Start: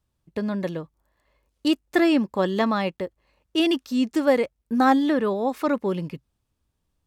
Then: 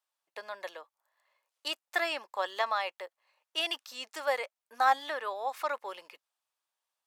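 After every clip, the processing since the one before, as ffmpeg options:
-af "highpass=f=680:w=0.5412,highpass=f=680:w=1.3066,volume=0.668"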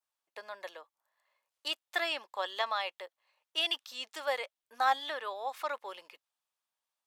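-af "adynamicequalizer=threshold=0.00316:dfrequency=3400:dqfactor=2.5:tfrequency=3400:tqfactor=2.5:attack=5:release=100:ratio=0.375:range=3.5:mode=boostabove:tftype=bell,volume=0.708"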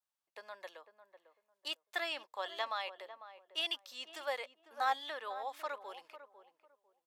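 -filter_complex "[0:a]asplit=2[s0][s1];[s1]adelay=499,lowpass=f=930:p=1,volume=0.299,asplit=2[s2][s3];[s3]adelay=499,lowpass=f=930:p=1,volume=0.26,asplit=2[s4][s5];[s5]adelay=499,lowpass=f=930:p=1,volume=0.26[s6];[s0][s2][s4][s6]amix=inputs=4:normalize=0,volume=0.562"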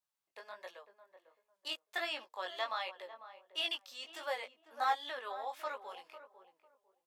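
-af "flanger=delay=16.5:depth=6:speed=1.4,volume=1.41"

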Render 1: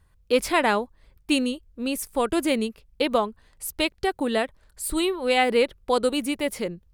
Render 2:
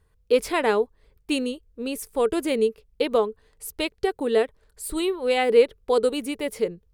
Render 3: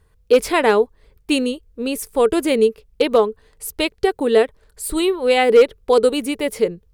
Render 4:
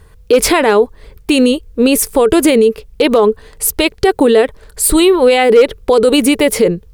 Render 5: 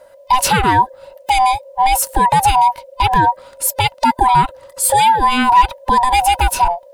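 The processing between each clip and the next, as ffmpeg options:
-af "equalizer=f=440:w=5.7:g=14.5,volume=0.668"
-af "asoftclip=type=hard:threshold=0.266,volume=2.11"
-af "alimiter=level_in=6.31:limit=0.891:release=50:level=0:latency=1,volume=0.891"
-af "afftfilt=real='real(if(lt(b,1008),b+24*(1-2*mod(floor(b/24),2)),b),0)':imag='imag(if(lt(b,1008),b+24*(1-2*mod(floor(b/24),2)),b),0)':win_size=2048:overlap=0.75,volume=0.75"

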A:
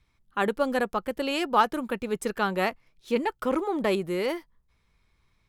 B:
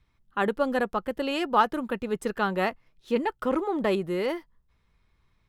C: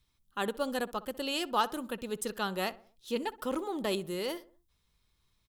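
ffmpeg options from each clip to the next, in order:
-af "bass=f=250:g=1,treble=f=4000:g=-6,bandreject=f=2300:w=13"
-filter_complex "[0:a]aexciter=amount=3.7:drive=5.5:freq=3000,asplit=2[s0][s1];[s1]adelay=63,lowpass=f=1600:p=1,volume=0.141,asplit=2[s2][s3];[s3]adelay=63,lowpass=f=1600:p=1,volume=0.48,asplit=2[s4][s5];[s5]adelay=63,lowpass=f=1600:p=1,volume=0.48,asplit=2[s6][s7];[s7]adelay=63,lowpass=f=1600:p=1,volume=0.48[s8];[s0][s2][s4][s6][s8]amix=inputs=5:normalize=0,volume=0.422"

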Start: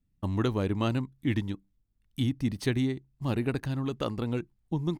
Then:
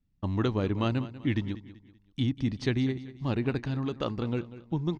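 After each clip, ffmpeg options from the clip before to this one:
-af "lowpass=f=5900:w=0.5412,lowpass=f=5900:w=1.3066,aecho=1:1:192|384|576:0.168|0.0621|0.023"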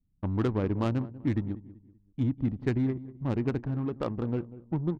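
-af "aemphasis=mode=reproduction:type=cd,adynamicsmooth=sensitivity=2:basefreq=560"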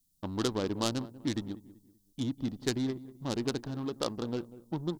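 -af "equalizer=f=64:t=o:w=2.6:g=-14,aexciter=amount=6.9:drive=7.2:freq=3400"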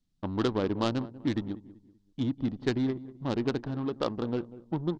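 -af "lowpass=2900,volume=1.5"

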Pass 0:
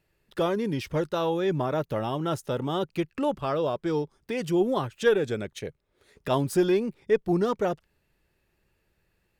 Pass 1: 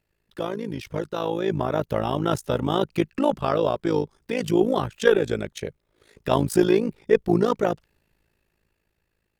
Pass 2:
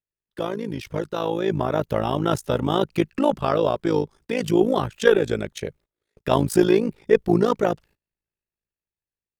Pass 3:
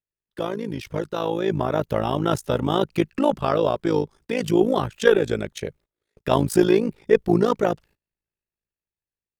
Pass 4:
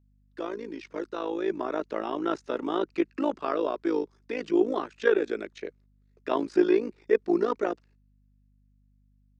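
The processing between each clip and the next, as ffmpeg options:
-af "dynaudnorm=f=290:g=11:m=2.82,tremolo=f=54:d=0.824"
-af "agate=range=0.0562:threshold=0.00316:ratio=16:detection=peak,volume=1.19"
-af anull
-filter_complex "[0:a]highpass=f=280:w=0.5412,highpass=f=280:w=1.3066,equalizer=f=320:t=q:w=4:g=3,equalizer=f=550:t=q:w=4:g=-5,equalizer=f=820:t=q:w=4:g=-5,equalizer=f=3200:t=q:w=4:g=-7,lowpass=f=6700:w=0.5412,lowpass=f=6700:w=1.3066,acrossover=split=4100[s0][s1];[s1]acompressor=threshold=0.00224:ratio=4:attack=1:release=60[s2];[s0][s2]amix=inputs=2:normalize=0,aeval=exprs='val(0)+0.00126*(sin(2*PI*50*n/s)+sin(2*PI*2*50*n/s)/2+sin(2*PI*3*50*n/s)/3+sin(2*PI*4*50*n/s)/4+sin(2*PI*5*50*n/s)/5)':c=same,volume=0.596"

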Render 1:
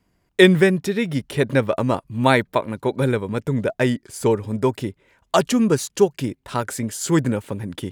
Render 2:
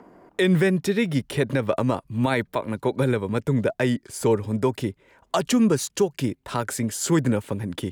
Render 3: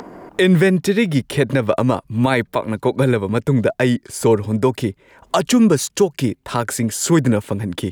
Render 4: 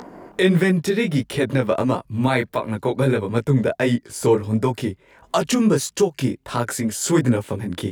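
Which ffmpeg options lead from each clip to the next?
-filter_complex "[0:a]acrossover=split=240|1300|3400[s0][s1][s2][s3];[s1]acompressor=mode=upward:threshold=0.0282:ratio=2.5[s4];[s0][s4][s2][s3]amix=inputs=4:normalize=0,alimiter=limit=0.282:level=0:latency=1:release=99"
-af "acompressor=mode=upward:threshold=0.02:ratio=2.5,volume=2"
-af "flanger=delay=16.5:depth=7.5:speed=1.5"

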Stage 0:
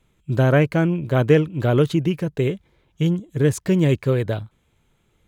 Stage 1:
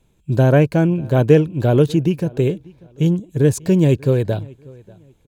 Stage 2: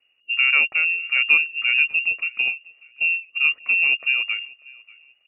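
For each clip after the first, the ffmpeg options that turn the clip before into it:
-filter_complex "[0:a]equalizer=f=1250:t=o:w=0.33:g=-10,equalizer=f=2000:t=o:w=0.33:g=-10,equalizer=f=3150:t=o:w=0.33:g=-5,asplit=2[s0][s1];[s1]adelay=591,lowpass=f=4200:p=1,volume=0.0631,asplit=2[s2][s3];[s3]adelay=591,lowpass=f=4200:p=1,volume=0.28[s4];[s0][s2][s4]amix=inputs=3:normalize=0,volume=1.5"
-af "lowpass=f=2500:t=q:w=0.5098,lowpass=f=2500:t=q:w=0.6013,lowpass=f=2500:t=q:w=0.9,lowpass=f=2500:t=q:w=2.563,afreqshift=-2900,volume=0.531"

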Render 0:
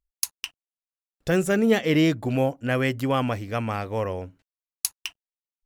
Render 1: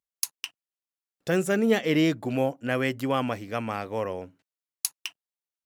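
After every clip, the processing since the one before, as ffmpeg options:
-af "highpass=150,volume=0.794"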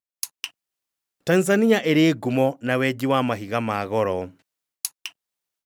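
-af "dynaudnorm=f=130:g=3:m=5.62,volume=0.531"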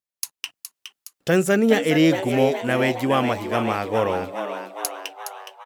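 -filter_complex "[0:a]asplit=9[s0][s1][s2][s3][s4][s5][s6][s7][s8];[s1]adelay=416,afreqshift=98,volume=0.376[s9];[s2]adelay=832,afreqshift=196,volume=0.232[s10];[s3]adelay=1248,afreqshift=294,volume=0.145[s11];[s4]adelay=1664,afreqshift=392,volume=0.0891[s12];[s5]adelay=2080,afreqshift=490,volume=0.0556[s13];[s6]adelay=2496,afreqshift=588,volume=0.0343[s14];[s7]adelay=2912,afreqshift=686,volume=0.0214[s15];[s8]adelay=3328,afreqshift=784,volume=0.0132[s16];[s0][s9][s10][s11][s12][s13][s14][s15][s16]amix=inputs=9:normalize=0"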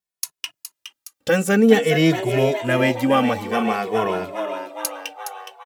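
-filter_complex "[0:a]asplit=2[s0][s1];[s1]adelay=2.3,afreqshift=-0.52[s2];[s0][s2]amix=inputs=2:normalize=1,volume=1.68"

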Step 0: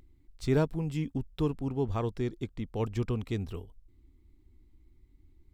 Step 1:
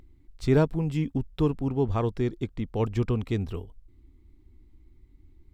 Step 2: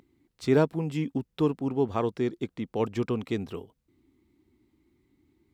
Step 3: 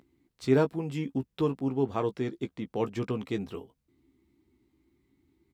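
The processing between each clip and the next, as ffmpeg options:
-af "highshelf=f=4400:g=-6,volume=1.78"
-af "highpass=190,volume=1.12"
-filter_complex "[0:a]asplit=2[s0][s1];[s1]adelay=15,volume=0.398[s2];[s0][s2]amix=inputs=2:normalize=0,volume=0.75"

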